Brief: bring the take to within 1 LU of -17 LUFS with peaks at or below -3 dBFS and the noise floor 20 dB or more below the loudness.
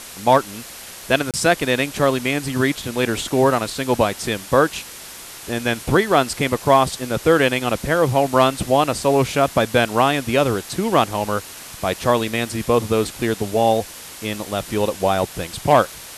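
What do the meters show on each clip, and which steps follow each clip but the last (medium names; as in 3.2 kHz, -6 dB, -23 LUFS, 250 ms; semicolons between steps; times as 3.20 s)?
dropouts 1; longest dropout 27 ms; noise floor -37 dBFS; noise floor target -40 dBFS; loudness -19.5 LUFS; peak level -3.0 dBFS; loudness target -17.0 LUFS
-> interpolate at 1.31 s, 27 ms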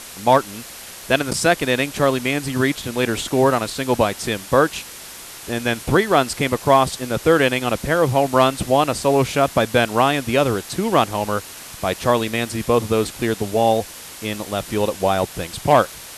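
dropouts 0; noise floor -37 dBFS; noise floor target -40 dBFS
-> noise reduction 6 dB, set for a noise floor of -37 dBFS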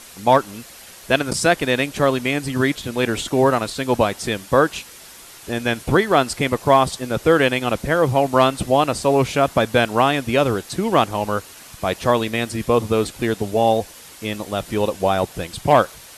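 noise floor -42 dBFS; loudness -19.5 LUFS; peak level -3.0 dBFS; loudness target -17.0 LUFS
-> trim +2.5 dB; peak limiter -3 dBFS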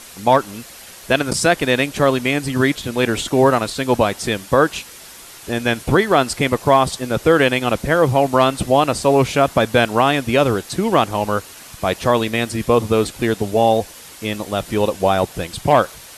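loudness -17.5 LUFS; peak level -3.0 dBFS; noise floor -39 dBFS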